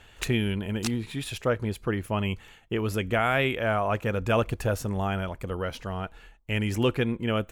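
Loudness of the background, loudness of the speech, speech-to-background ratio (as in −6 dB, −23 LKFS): −38.5 LKFS, −28.5 LKFS, 10.0 dB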